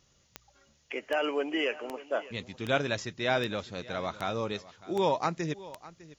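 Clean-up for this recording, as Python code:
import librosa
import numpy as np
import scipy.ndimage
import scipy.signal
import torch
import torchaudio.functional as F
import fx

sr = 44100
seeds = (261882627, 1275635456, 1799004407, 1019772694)

y = fx.fix_declick_ar(x, sr, threshold=10.0)
y = fx.noise_reduce(y, sr, print_start_s=0.0, print_end_s=0.5, reduce_db=11.0)
y = fx.fix_echo_inverse(y, sr, delay_ms=604, level_db=-18.5)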